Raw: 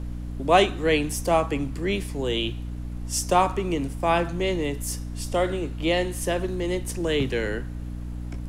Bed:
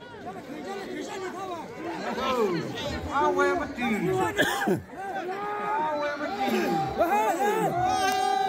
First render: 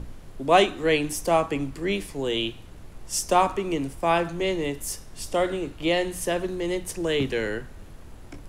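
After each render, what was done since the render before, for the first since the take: hum notches 60/120/180/240/300 Hz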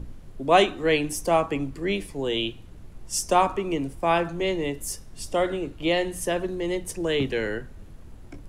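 noise reduction 6 dB, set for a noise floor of -44 dBFS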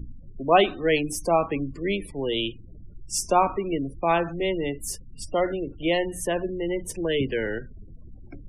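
spectral gate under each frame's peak -25 dB strong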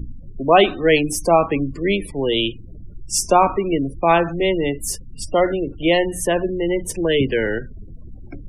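trim +7 dB; peak limiter -3 dBFS, peak gain reduction 3 dB

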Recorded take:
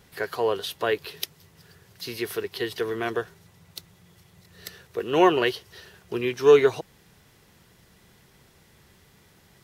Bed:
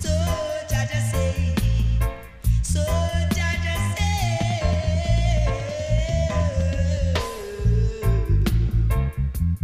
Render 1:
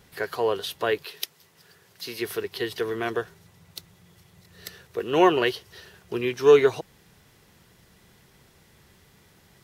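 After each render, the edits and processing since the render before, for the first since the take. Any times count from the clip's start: 1.02–2.20 s: high-pass 620 Hz -> 230 Hz 6 dB/octave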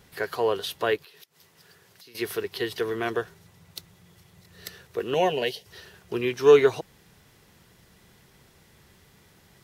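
0.96–2.15 s: compression 8:1, threshold -48 dBFS; 5.14–5.66 s: static phaser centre 330 Hz, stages 6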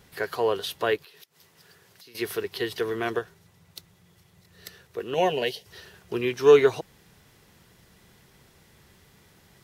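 3.19–5.18 s: gain -3.5 dB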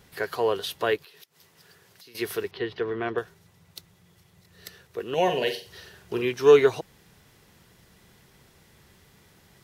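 2.51–3.18 s: distance through air 280 m; 5.23–6.23 s: flutter echo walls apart 7.6 m, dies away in 0.35 s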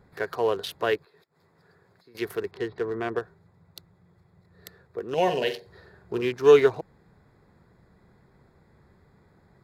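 local Wiener filter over 15 samples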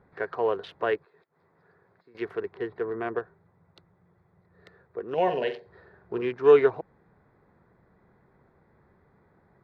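low-pass 2 kHz 12 dB/octave; bass shelf 210 Hz -7 dB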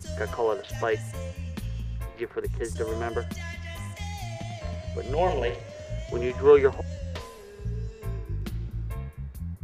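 add bed -13 dB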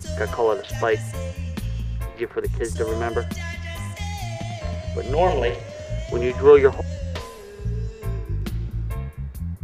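trim +5.5 dB; peak limiter -3 dBFS, peak gain reduction 1.5 dB

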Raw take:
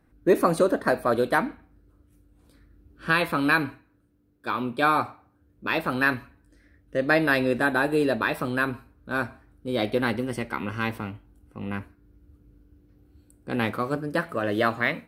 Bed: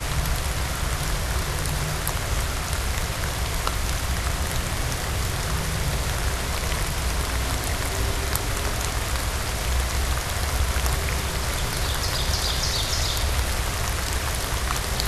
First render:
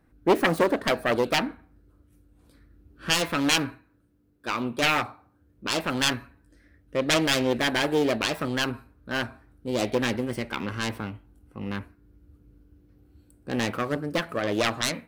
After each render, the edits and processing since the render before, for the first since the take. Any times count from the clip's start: self-modulated delay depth 0.47 ms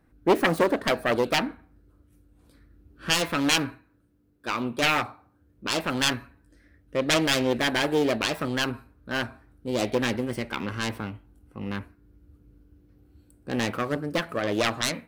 no audible change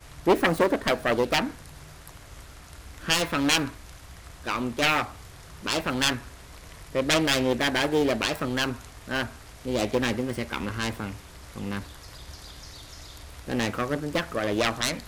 add bed -20 dB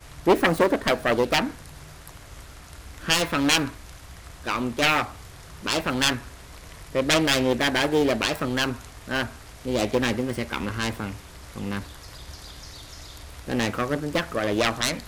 trim +2 dB

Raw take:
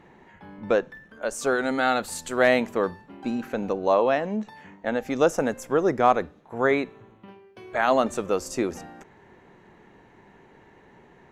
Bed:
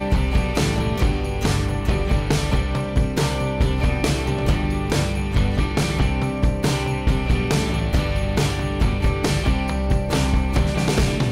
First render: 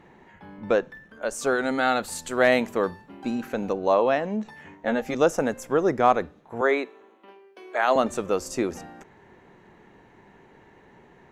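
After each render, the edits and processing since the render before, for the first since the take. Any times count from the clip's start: 2.52–3.74 s: treble shelf 5.6 kHz +4.5 dB; 4.44–5.15 s: doubling 13 ms -3.5 dB; 6.61–7.96 s: high-pass 300 Hz 24 dB/octave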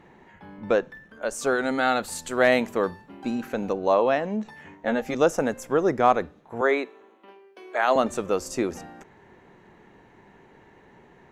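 no audible change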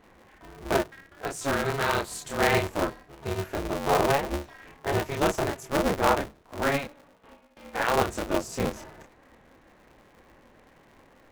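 chorus voices 2, 1.5 Hz, delay 27 ms, depth 3 ms; polarity switched at an audio rate 140 Hz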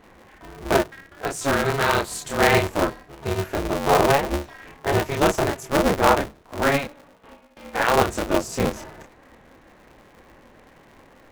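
trim +5.5 dB

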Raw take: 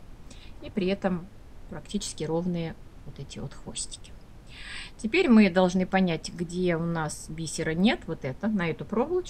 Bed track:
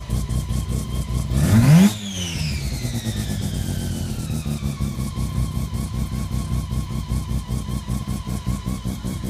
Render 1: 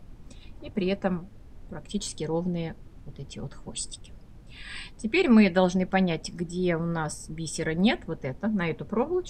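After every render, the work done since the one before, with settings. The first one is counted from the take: noise reduction 6 dB, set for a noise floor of -49 dBFS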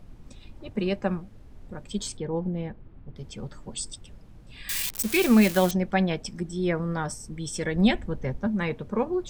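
2.17–3.16 s: distance through air 400 m; 4.69–5.71 s: zero-crossing glitches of -19.5 dBFS; 7.75–8.47 s: bass shelf 110 Hz +11 dB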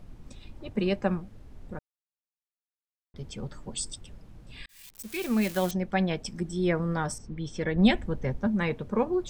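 1.79–3.14 s: mute; 4.66–6.47 s: fade in; 7.18–7.85 s: distance through air 180 m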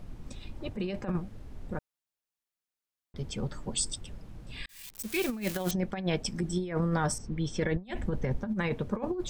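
compressor with a negative ratio -29 dBFS, ratio -0.5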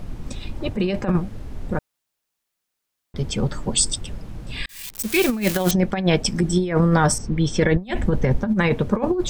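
trim +11.5 dB

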